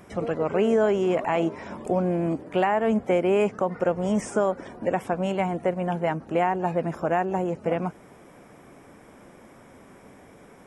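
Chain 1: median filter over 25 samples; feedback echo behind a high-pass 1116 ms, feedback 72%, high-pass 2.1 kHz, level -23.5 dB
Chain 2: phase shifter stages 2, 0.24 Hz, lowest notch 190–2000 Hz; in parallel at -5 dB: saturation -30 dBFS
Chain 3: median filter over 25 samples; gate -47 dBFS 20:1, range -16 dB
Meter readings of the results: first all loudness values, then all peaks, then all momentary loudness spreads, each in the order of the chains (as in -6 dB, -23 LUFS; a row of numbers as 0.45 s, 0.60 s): -26.0 LUFS, -27.0 LUFS, -26.0 LUFS; -12.5 dBFS, -12.0 dBFS, -12.5 dBFS; 6 LU, 9 LU, 6 LU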